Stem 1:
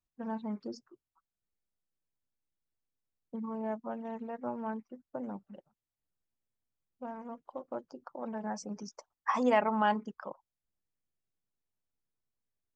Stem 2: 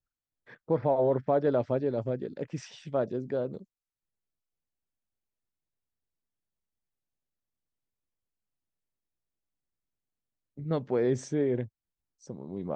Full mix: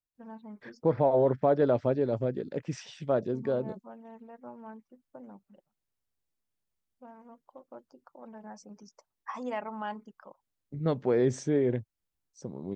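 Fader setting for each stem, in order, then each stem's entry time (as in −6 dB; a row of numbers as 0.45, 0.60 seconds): −8.5, +1.5 decibels; 0.00, 0.15 seconds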